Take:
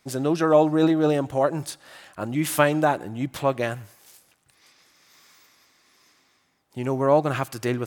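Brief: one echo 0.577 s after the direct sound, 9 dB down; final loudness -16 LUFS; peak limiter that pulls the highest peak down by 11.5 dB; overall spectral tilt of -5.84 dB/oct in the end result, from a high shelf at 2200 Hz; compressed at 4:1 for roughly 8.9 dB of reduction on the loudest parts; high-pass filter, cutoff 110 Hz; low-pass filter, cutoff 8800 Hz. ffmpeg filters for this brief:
-af "highpass=110,lowpass=8.8k,highshelf=f=2.2k:g=-3,acompressor=threshold=-23dB:ratio=4,alimiter=limit=-20.5dB:level=0:latency=1,aecho=1:1:577:0.355,volume=16dB"

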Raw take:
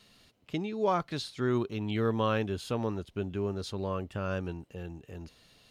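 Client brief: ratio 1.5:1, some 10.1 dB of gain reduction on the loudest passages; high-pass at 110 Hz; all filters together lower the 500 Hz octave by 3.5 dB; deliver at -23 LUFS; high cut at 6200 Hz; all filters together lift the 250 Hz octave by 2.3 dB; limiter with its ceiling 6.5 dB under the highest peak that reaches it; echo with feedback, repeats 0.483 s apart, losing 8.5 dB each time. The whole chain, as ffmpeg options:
-af "highpass=110,lowpass=6.2k,equalizer=f=250:t=o:g=5,equalizer=f=500:t=o:g=-6.5,acompressor=threshold=-53dB:ratio=1.5,alimiter=level_in=8.5dB:limit=-24dB:level=0:latency=1,volume=-8.5dB,aecho=1:1:483|966|1449|1932:0.376|0.143|0.0543|0.0206,volume=20.5dB"

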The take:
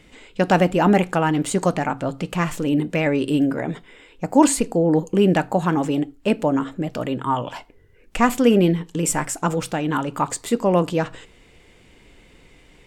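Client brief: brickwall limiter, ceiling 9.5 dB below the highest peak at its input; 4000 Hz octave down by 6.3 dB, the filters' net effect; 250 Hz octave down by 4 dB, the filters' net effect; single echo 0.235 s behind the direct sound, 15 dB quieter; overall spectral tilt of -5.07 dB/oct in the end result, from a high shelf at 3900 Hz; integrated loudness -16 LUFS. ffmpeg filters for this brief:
-af "equalizer=f=250:t=o:g=-5.5,highshelf=f=3.9k:g=-4,equalizer=f=4k:t=o:g=-7.5,alimiter=limit=-14.5dB:level=0:latency=1,aecho=1:1:235:0.178,volume=9.5dB"

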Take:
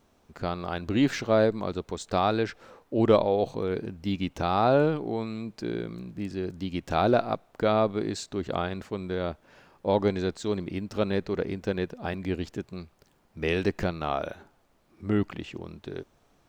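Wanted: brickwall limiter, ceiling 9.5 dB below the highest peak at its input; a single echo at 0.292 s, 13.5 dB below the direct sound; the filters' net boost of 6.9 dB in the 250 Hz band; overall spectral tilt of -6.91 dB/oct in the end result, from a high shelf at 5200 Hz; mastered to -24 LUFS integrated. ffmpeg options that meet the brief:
-af "equalizer=f=250:t=o:g=9,highshelf=f=5.2k:g=-8.5,alimiter=limit=-14.5dB:level=0:latency=1,aecho=1:1:292:0.211,volume=3.5dB"

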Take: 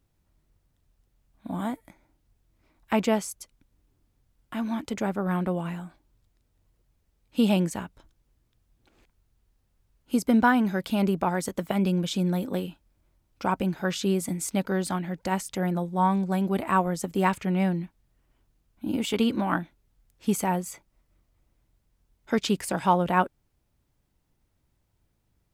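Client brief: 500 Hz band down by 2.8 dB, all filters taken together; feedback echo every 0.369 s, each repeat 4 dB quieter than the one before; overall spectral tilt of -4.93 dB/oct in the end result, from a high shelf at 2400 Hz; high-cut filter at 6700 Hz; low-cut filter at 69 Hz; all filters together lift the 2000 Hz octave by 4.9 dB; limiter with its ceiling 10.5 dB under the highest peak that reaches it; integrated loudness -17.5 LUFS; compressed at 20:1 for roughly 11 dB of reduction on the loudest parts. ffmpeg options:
-af "highpass=69,lowpass=6.7k,equalizer=f=500:t=o:g=-4,equalizer=f=2k:t=o:g=9,highshelf=f=2.4k:g=-4,acompressor=threshold=-26dB:ratio=20,alimiter=limit=-24dB:level=0:latency=1,aecho=1:1:369|738|1107|1476|1845|2214|2583|2952|3321:0.631|0.398|0.25|0.158|0.0994|0.0626|0.0394|0.0249|0.0157,volume=16.5dB"

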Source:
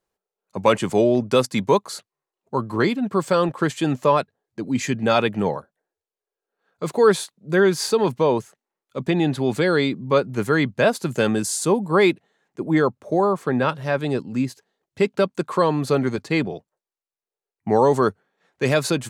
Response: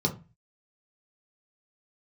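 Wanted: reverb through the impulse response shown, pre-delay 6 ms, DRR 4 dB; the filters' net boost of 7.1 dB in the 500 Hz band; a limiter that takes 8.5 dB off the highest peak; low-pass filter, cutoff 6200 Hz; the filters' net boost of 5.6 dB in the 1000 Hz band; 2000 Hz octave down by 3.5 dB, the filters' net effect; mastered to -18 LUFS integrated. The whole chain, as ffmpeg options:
-filter_complex "[0:a]lowpass=6.2k,equalizer=f=500:t=o:g=7.5,equalizer=f=1k:t=o:g=6.5,equalizer=f=2k:t=o:g=-8,alimiter=limit=-6.5dB:level=0:latency=1,asplit=2[a][b];[1:a]atrim=start_sample=2205,adelay=6[c];[b][c]afir=irnorm=-1:irlink=0,volume=-12.5dB[d];[a][d]amix=inputs=2:normalize=0,volume=-4.5dB"

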